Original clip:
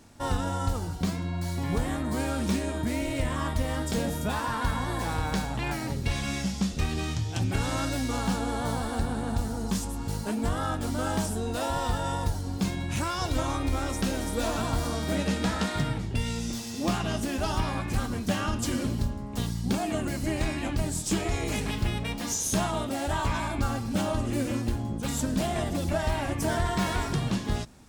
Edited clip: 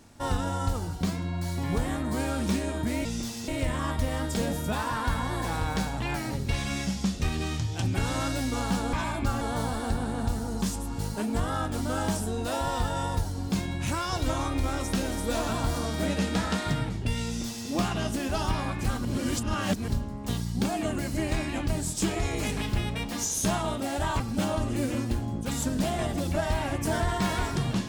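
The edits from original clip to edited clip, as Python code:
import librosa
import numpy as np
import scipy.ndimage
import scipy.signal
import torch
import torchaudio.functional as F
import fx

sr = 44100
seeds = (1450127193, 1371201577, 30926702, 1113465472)

y = fx.edit(x, sr, fx.duplicate(start_s=16.35, length_s=0.43, to_s=3.05),
    fx.reverse_span(start_s=18.14, length_s=0.83),
    fx.move(start_s=23.29, length_s=0.48, to_s=8.5), tone=tone)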